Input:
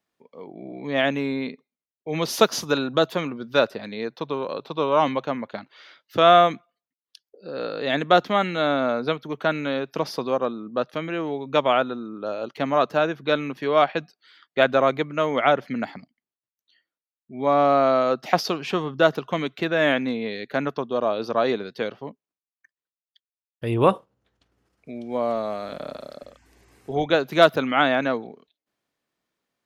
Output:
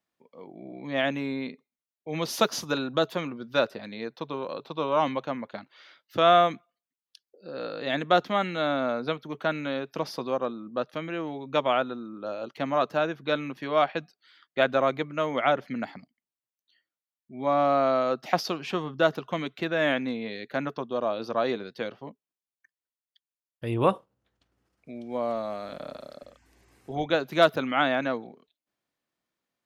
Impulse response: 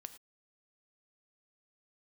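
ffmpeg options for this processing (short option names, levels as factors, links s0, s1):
-af "bandreject=f=430:w=12,volume=0.596"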